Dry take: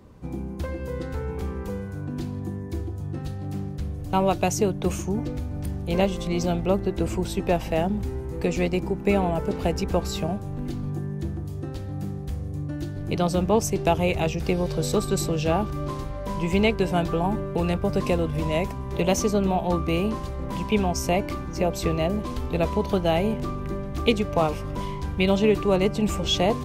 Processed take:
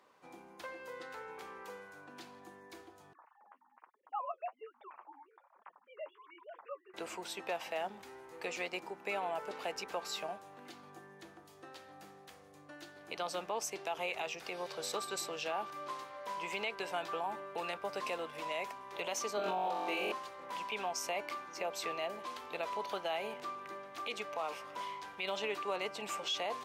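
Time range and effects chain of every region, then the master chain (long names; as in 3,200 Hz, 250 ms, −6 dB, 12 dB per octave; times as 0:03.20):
0:03.13–0:06.94: three sine waves on the formant tracks + flanger 1.2 Hz, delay 4.4 ms, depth 7 ms, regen +28% + resonant band-pass 980 Hz, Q 2.9
0:19.37–0:20.12: high-pass filter 270 Hz + low-shelf EQ 360 Hz +11.5 dB + flutter between parallel walls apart 3.7 metres, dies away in 1 s
whole clip: high-pass filter 900 Hz 12 dB per octave; high-shelf EQ 5,200 Hz −8.5 dB; brickwall limiter −24.5 dBFS; level −3 dB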